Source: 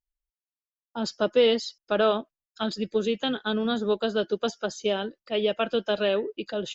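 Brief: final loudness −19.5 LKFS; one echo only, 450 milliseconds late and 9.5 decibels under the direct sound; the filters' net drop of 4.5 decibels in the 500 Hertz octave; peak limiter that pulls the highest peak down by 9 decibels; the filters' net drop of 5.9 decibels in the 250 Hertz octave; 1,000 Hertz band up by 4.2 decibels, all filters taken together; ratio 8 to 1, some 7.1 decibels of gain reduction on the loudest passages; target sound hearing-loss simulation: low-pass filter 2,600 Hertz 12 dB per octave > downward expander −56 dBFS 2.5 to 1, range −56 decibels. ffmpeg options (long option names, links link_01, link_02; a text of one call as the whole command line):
ffmpeg -i in.wav -af "equalizer=frequency=250:width_type=o:gain=-6,equalizer=frequency=500:width_type=o:gain=-6.5,equalizer=frequency=1000:width_type=o:gain=8.5,acompressor=threshold=-25dB:ratio=8,alimiter=limit=-22.5dB:level=0:latency=1,lowpass=2600,aecho=1:1:450:0.335,agate=range=-56dB:threshold=-56dB:ratio=2.5,volume=16dB" out.wav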